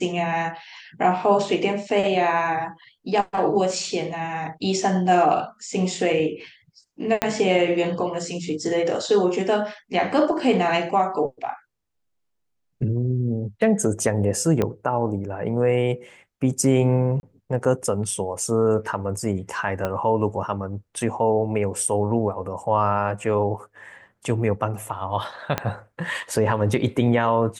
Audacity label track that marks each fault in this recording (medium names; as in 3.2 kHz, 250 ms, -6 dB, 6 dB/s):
7.220000	7.220000	pop -5 dBFS
14.620000	14.620000	pop -10 dBFS
17.200000	17.230000	dropout 31 ms
19.850000	19.850000	pop -12 dBFS
25.580000	25.580000	pop -8 dBFS